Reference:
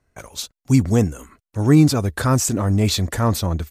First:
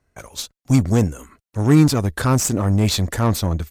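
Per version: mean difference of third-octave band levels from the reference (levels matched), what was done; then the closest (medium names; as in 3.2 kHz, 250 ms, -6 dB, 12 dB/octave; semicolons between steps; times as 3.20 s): 1.5 dB: Chebyshev shaper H 8 -25 dB, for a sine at -3 dBFS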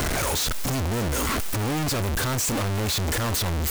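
13.5 dB: one-bit comparator; trim -6 dB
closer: first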